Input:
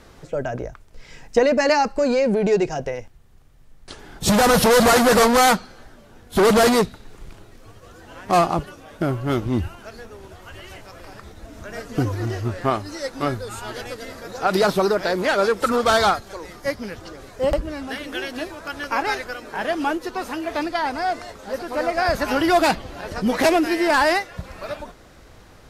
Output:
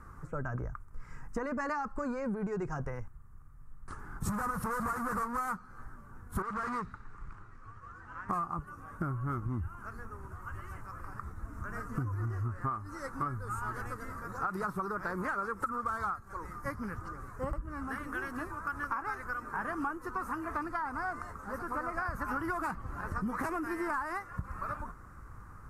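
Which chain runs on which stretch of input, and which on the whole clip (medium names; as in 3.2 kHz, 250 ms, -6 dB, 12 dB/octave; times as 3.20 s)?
6.42–8.29 s: low-pass 4 kHz + compression 2:1, threshold -26 dBFS + tilt shelf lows -5.5 dB, about 1.2 kHz
whole clip: FFT filter 120 Hz 0 dB, 250 Hz -7 dB, 450 Hz -13 dB, 660 Hz -17 dB, 1.2 kHz +5 dB, 3.4 kHz -30 dB, 8.6 kHz -10 dB; compression 12:1, threshold -31 dBFS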